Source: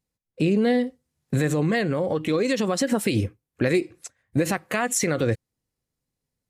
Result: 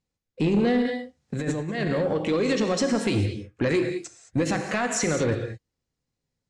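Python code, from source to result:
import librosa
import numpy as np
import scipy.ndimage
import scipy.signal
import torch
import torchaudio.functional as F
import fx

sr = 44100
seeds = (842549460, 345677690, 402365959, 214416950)

y = fx.rev_gated(x, sr, seeds[0], gate_ms=240, shape='flat', drr_db=6.0)
y = fx.over_compress(y, sr, threshold_db=-25.0, ratio=-0.5, at=(0.85, 1.91))
y = 10.0 ** (-15.0 / 20.0) * np.tanh(y / 10.0 ** (-15.0 / 20.0))
y = scipy.signal.sosfilt(scipy.signal.butter(4, 7500.0, 'lowpass', fs=sr, output='sos'), y)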